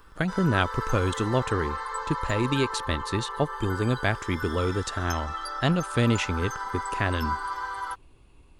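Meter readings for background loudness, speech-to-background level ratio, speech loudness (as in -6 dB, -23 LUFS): -33.5 LUFS, 5.5 dB, -28.0 LUFS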